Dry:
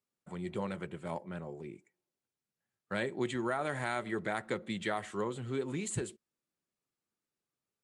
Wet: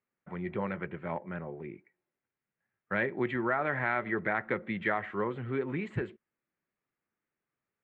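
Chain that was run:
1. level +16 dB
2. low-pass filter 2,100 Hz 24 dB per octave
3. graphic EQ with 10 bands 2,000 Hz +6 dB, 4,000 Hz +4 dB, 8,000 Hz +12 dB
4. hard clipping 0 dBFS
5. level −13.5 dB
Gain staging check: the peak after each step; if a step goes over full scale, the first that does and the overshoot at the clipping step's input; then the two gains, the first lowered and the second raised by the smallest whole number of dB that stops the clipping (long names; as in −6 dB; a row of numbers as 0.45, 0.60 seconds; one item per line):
−4.0, −5.0, −1.5, −1.5, −15.0 dBFS
no step passes full scale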